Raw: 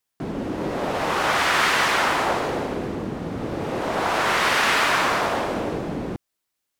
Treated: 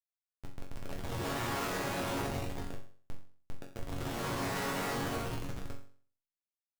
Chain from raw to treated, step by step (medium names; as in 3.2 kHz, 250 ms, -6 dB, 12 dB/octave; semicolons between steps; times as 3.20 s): granulator 142 ms, grains 16 per s; Schmitt trigger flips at -20 dBFS; chord resonator F#2 major, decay 0.45 s; trim +5.5 dB